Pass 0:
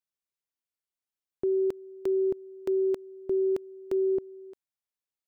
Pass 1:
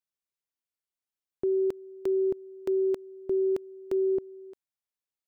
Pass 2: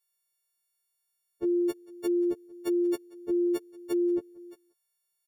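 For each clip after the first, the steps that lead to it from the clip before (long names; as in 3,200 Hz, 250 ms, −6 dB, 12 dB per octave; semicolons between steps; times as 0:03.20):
no processing that can be heard
every partial snapped to a pitch grid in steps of 4 semitones; single-tap delay 182 ms −23 dB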